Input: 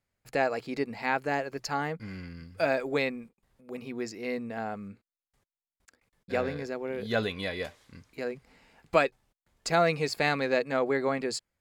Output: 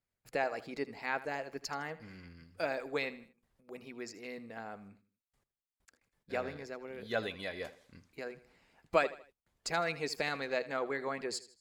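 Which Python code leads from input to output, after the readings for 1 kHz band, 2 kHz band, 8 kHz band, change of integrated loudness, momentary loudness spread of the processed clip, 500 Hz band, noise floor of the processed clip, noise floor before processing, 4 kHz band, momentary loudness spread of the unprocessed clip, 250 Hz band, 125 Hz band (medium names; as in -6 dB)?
-7.0 dB, -6.0 dB, -4.5 dB, -7.0 dB, 16 LU, -7.5 dB, under -85 dBFS, under -85 dBFS, -5.5 dB, 14 LU, -10.0 dB, -11.5 dB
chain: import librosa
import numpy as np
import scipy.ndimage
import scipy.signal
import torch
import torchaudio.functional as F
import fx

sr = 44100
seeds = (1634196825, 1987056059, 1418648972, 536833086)

y = fx.hpss(x, sr, part='harmonic', gain_db=-8)
y = fx.echo_feedback(y, sr, ms=79, feedback_pct=39, wet_db=-16.5)
y = y * 10.0 ** (-4.5 / 20.0)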